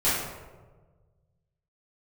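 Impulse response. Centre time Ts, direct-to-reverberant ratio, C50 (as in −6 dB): 79 ms, −12.0 dB, −0.5 dB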